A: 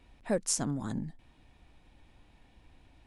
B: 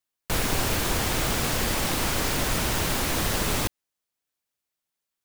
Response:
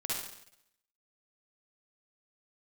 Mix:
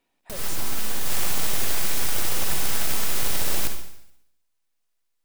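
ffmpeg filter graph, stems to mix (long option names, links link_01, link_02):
-filter_complex "[0:a]highpass=270,volume=-10dB,asplit=2[link_01][link_02];[1:a]highshelf=frequency=8500:gain=8.5,aeval=exprs='abs(val(0))':channel_layout=same,volume=-4dB,asplit=2[link_03][link_04];[link_04]volume=-5dB[link_05];[link_02]apad=whole_len=231410[link_06];[link_03][link_06]sidechaincompress=threshold=-57dB:ratio=8:attack=8.9:release=103[link_07];[2:a]atrim=start_sample=2205[link_08];[link_05][link_08]afir=irnorm=-1:irlink=0[link_09];[link_01][link_07][link_09]amix=inputs=3:normalize=0"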